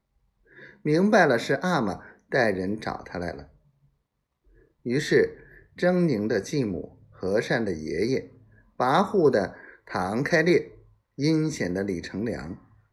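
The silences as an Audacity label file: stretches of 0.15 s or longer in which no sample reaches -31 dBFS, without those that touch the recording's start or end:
1.950000	2.320000	silence
3.390000	4.860000	silence
5.290000	5.790000	silence
6.850000	7.230000	silence
8.200000	8.800000	silence
9.480000	9.910000	silence
10.620000	11.190000	silence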